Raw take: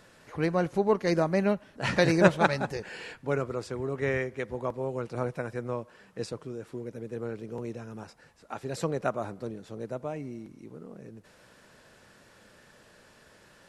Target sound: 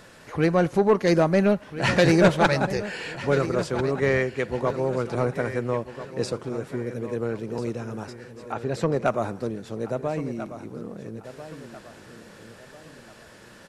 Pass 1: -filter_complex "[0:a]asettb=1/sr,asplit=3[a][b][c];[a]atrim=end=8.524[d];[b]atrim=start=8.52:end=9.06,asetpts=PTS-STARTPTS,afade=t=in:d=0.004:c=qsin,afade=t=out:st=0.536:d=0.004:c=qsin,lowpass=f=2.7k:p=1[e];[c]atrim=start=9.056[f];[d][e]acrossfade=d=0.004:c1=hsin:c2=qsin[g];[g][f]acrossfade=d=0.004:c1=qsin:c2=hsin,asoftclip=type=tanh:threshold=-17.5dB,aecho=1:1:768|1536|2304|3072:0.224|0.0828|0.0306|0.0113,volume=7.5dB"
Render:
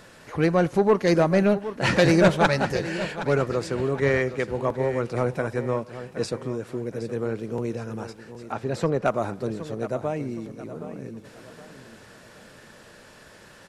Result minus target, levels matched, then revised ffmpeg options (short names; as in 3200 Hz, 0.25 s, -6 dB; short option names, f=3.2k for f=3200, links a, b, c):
echo 0.574 s early
-filter_complex "[0:a]asettb=1/sr,asplit=3[a][b][c];[a]atrim=end=8.524[d];[b]atrim=start=8.52:end=9.06,asetpts=PTS-STARTPTS,afade=t=in:d=0.004:c=qsin,afade=t=out:st=0.536:d=0.004:c=qsin,lowpass=f=2.7k:p=1[e];[c]atrim=start=9.056[f];[d][e]acrossfade=d=0.004:c1=hsin:c2=qsin[g];[g][f]acrossfade=d=0.004:c1=qsin:c2=hsin,asoftclip=type=tanh:threshold=-17.5dB,aecho=1:1:1342|2684|4026|5368:0.224|0.0828|0.0306|0.0113,volume=7.5dB"